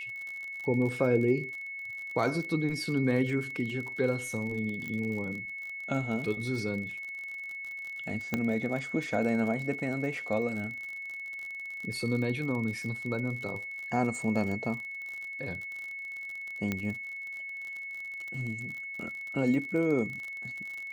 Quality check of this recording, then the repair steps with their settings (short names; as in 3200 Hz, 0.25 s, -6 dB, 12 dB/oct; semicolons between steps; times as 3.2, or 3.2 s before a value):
crackle 49/s -36 dBFS
tone 2200 Hz -37 dBFS
4.88 pop -25 dBFS
8.34 pop -15 dBFS
16.72 pop -17 dBFS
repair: de-click; notch 2200 Hz, Q 30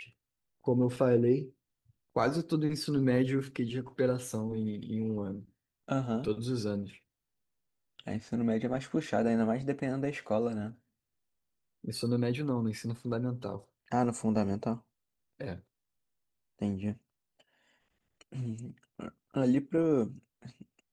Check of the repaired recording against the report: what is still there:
none